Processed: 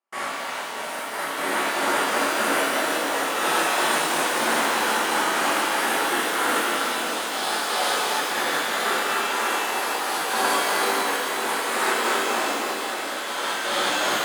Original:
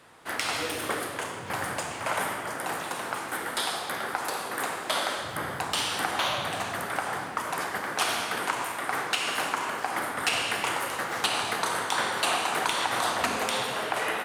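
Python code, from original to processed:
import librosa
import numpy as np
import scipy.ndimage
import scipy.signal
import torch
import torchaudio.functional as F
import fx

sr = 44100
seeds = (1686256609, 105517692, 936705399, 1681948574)

y = scipy.signal.sosfilt(scipy.signal.butter(4, 220.0, 'highpass', fs=sr, output='sos'), x)
y = fx.over_compress(y, sr, threshold_db=-35.0, ratio=-0.5)
y = fx.paulstretch(y, sr, seeds[0], factor=4.3, window_s=0.25, from_s=2.02)
y = fx.step_gate(y, sr, bpm=121, pattern='.x.xx.xx', floor_db=-60.0, edge_ms=4.5)
y = fx.echo_alternate(y, sr, ms=555, hz=980.0, feedback_pct=58, wet_db=-5.5)
y = fx.rev_shimmer(y, sr, seeds[1], rt60_s=2.2, semitones=12, shimmer_db=-8, drr_db=-9.5)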